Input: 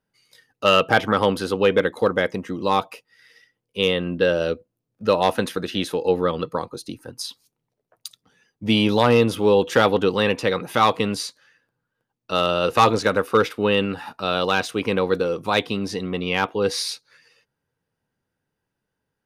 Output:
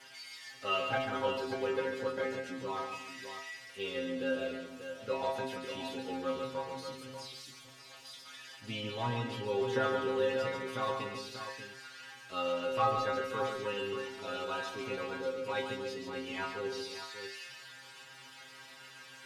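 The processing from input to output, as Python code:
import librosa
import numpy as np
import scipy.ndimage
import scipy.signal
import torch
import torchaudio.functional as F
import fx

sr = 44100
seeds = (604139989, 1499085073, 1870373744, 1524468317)

p1 = x + 0.5 * 10.0 ** (-14.5 / 20.0) * np.diff(np.sign(x), prepend=np.sign(x[:1]))
p2 = scipy.signal.sosfilt(scipy.signal.butter(2, 3100.0, 'lowpass', fs=sr, output='sos'), p1)
p3 = fx.low_shelf(p2, sr, hz=120.0, db=4.5)
p4 = fx.stiff_resonator(p3, sr, f0_hz=130.0, decay_s=0.42, stiffness=0.002)
p5 = p4 + fx.echo_multitap(p4, sr, ms=(142, 287, 588), db=(-6.5, -13.5, -9.0), dry=0)
y = p5 * librosa.db_to_amplitude(-3.5)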